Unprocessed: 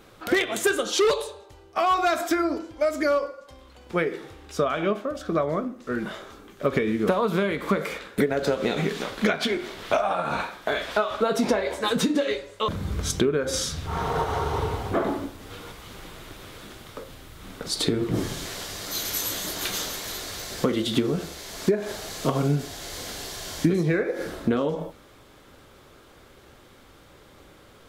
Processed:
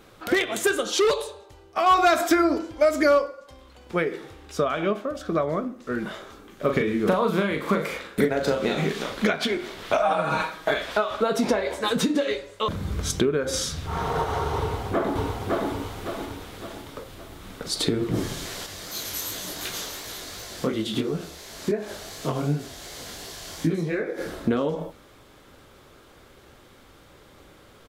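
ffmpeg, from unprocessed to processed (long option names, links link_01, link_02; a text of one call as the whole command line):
ffmpeg -i in.wav -filter_complex "[0:a]asettb=1/sr,asplit=3[link_01][link_02][link_03];[link_01]atrim=end=6.484[link_04];[link_02]atrim=start=6.48:end=9.22,asetpts=PTS-STARTPTS,afade=type=in:duration=0.004:curve=qsin,afade=type=out:start_time=2.736:duration=0.004:curve=qsin,asplit=2[link_05][link_06];[link_06]adelay=39,volume=-6dB[link_07];[link_05][link_07]amix=inputs=2:normalize=0,atrim=end_sample=120834[link_08];[link_03]atrim=start=9.216[link_09];[link_04][link_08]acrossfade=duration=0.004:curve1=hsin:curve2=qsin[link_10];[link_10][link_09]acrossfade=duration=0.004:curve1=qsin:curve2=hsin,asettb=1/sr,asplit=3[link_11][link_12][link_13];[link_11]atrim=end=10.004[link_14];[link_12]atrim=start=10:end=10.74,asetpts=PTS-STARTPTS,afade=type=in:duration=0.004:curve=qsin,afade=type=out:start_time=0.736:duration=0.004:curve=qsin,aecho=1:1:6.3:0.91,atrim=end_sample=32634[link_15];[link_13]atrim=start=10.736[link_16];[link_14][link_15]acrossfade=duration=0.004:curve1=hsin:curve2=qsin[link_17];[link_17][link_16]acrossfade=duration=0.004:curve1=qsin:curve2=hsin,asplit=2[link_18][link_19];[link_19]afade=type=in:start_time=14.59:duration=0.01,afade=type=out:start_time=15.69:duration=0.01,aecho=0:1:560|1120|1680|2240|2800|3360:0.891251|0.401063|0.180478|0.0812152|0.0365469|0.0164461[link_20];[link_18][link_20]amix=inputs=2:normalize=0,asettb=1/sr,asplit=3[link_21][link_22][link_23];[link_21]atrim=end=18.664[link_24];[link_22]atrim=start=18.66:end=24.18,asetpts=PTS-STARTPTS,afade=type=in:duration=0.004:curve=qsin,afade=type=out:start_time=5.516:duration=0.004:curve=qsin,flanger=delay=18:depth=6.8:speed=2.8[link_25];[link_23]atrim=start=24.176[link_26];[link_24][link_25]acrossfade=duration=0.004:curve1=hsin:curve2=qsin[link_27];[link_27][link_26]acrossfade=duration=0.004:curve1=qsin:curve2=hsin,asplit=3[link_28][link_29][link_30];[link_28]atrim=end=1.862[link_31];[link_29]atrim=start=1.858:end=3.222,asetpts=PTS-STARTPTS,volume=4dB[link_32];[link_30]atrim=start=3.218[link_33];[link_31][link_32]acrossfade=duration=0.004:curve1=hsin:curve2=hsin[link_34];[link_34][link_33]acrossfade=duration=0.004:curve1=hsin:curve2=hsin" out.wav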